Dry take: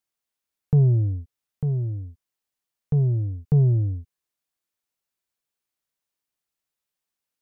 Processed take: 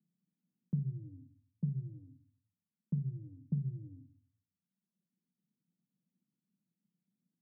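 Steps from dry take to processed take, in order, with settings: G.711 law mismatch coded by mu; reverb removal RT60 0.99 s; compressor, threshold -28 dBFS, peak gain reduction 12.5 dB; Butterworth band-pass 190 Hz, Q 2.6; shoebox room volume 170 m³, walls furnished, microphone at 0.71 m; three-band squash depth 40%; gain +2.5 dB

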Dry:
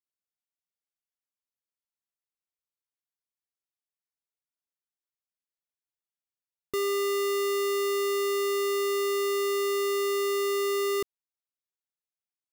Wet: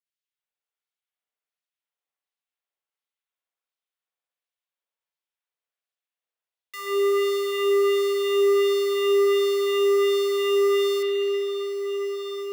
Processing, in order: LFO high-pass sine 1.4 Hz 460–3900 Hz; diffused feedback echo 1.498 s, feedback 60%, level -11 dB; spring tank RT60 3.4 s, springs 60 ms, chirp 75 ms, DRR -7 dB; gain -4.5 dB

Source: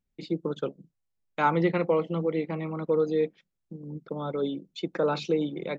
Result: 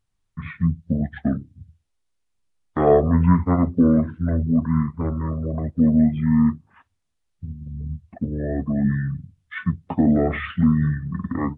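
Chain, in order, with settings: speed mistake 15 ips tape played at 7.5 ips; gain +7.5 dB

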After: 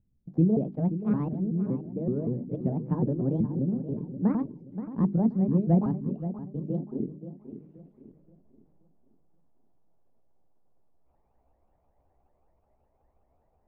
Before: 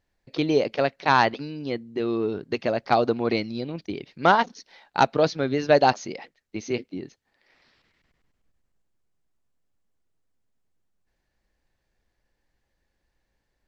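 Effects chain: repeated pitch sweeps +8 st, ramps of 0.189 s; low-pass sweep 190 Hz -> 760 Hz, 6.69–8.72; notches 50/100/150/200/250/300/350/400 Hz; on a send: darkening echo 0.527 s, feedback 36%, low-pass 2100 Hz, level -11 dB; on the sum: gain +6 dB

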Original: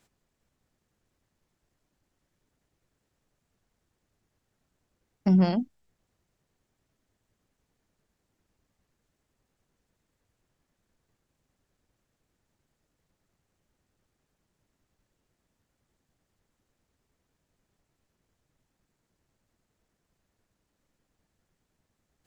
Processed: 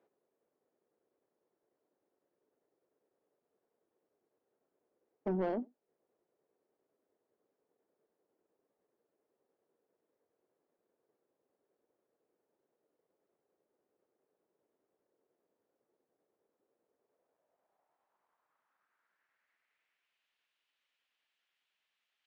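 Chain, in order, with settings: band-pass sweep 430 Hz -> 3000 Hz, 16.84–20.28; outdoor echo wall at 16 m, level -30 dB; overdrive pedal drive 21 dB, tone 2300 Hz, clips at -18.5 dBFS; gain -5.5 dB

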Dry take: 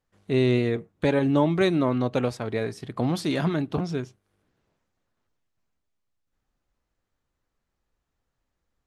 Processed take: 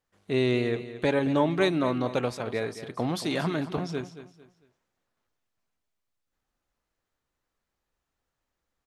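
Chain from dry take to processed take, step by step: low shelf 300 Hz -7 dB; on a send: feedback echo 0.225 s, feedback 32%, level -13 dB

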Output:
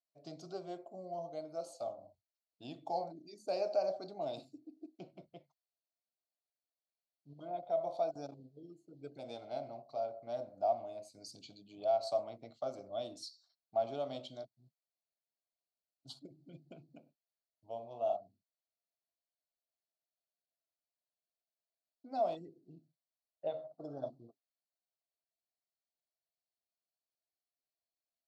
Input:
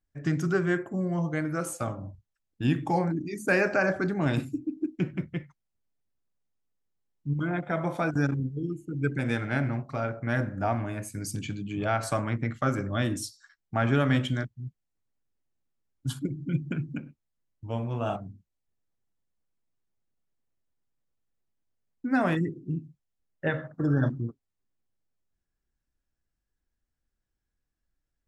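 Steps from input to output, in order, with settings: double band-pass 1700 Hz, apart 2.7 oct; gain +1 dB

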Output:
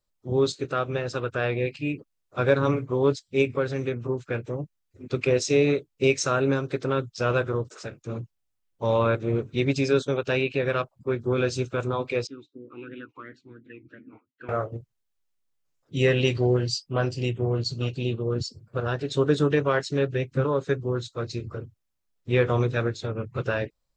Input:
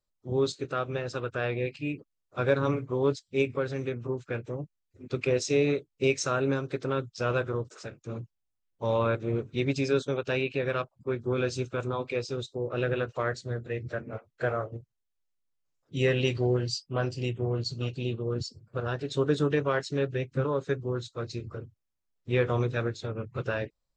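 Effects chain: 12.27–14.49 vowel sweep i-u 2.9 Hz; gain +4 dB

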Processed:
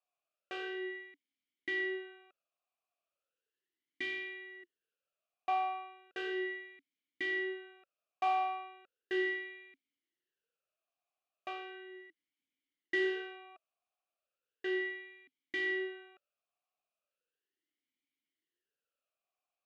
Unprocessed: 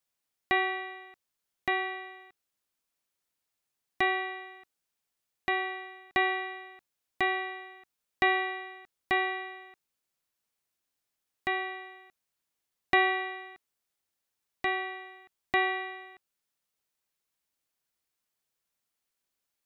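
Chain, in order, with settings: soft clip -28.5 dBFS, distortion -8 dB; vowel sweep a-i 0.36 Hz; gain +8.5 dB

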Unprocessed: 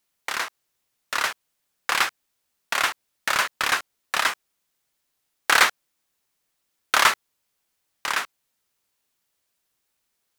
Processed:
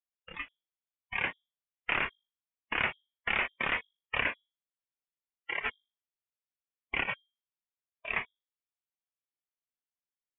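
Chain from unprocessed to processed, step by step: negative-ratio compressor -20 dBFS, ratio -0.5; spectral noise reduction 18 dB; notches 50/100/150/200/250/300/350/400/450 Hz; inverted band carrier 3600 Hz; gain -7.5 dB

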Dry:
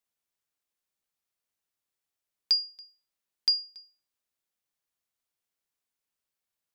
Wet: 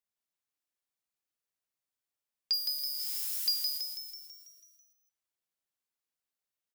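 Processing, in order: 2.53–3.78 switching spikes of -25.5 dBFS; frequency-shifting echo 0.164 s, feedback 58%, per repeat +140 Hz, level -4.5 dB; gain -6.5 dB

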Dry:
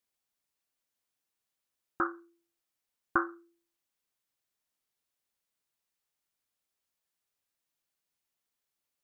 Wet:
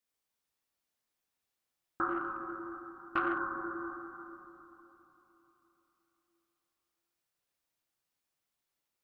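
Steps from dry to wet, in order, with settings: reverb RT60 3.5 s, pre-delay 3 ms, DRR -4 dB; 2.09–3.38 core saturation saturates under 730 Hz; gain -4 dB

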